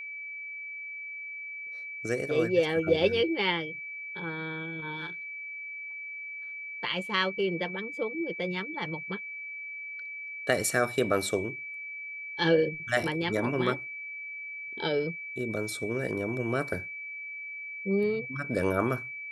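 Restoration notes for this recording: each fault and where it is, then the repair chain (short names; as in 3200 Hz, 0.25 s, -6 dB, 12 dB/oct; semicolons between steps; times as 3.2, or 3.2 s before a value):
tone 2300 Hz -37 dBFS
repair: notch 2300 Hz, Q 30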